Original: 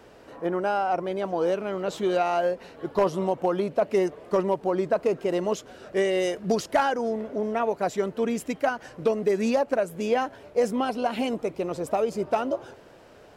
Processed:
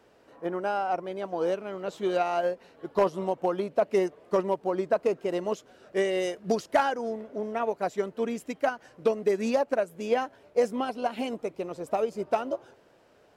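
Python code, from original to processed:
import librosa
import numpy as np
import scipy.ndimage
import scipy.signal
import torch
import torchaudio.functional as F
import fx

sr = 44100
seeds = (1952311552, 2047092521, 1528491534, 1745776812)

y = fx.low_shelf(x, sr, hz=90.0, db=-7.0)
y = fx.upward_expand(y, sr, threshold_db=-36.0, expansion=1.5)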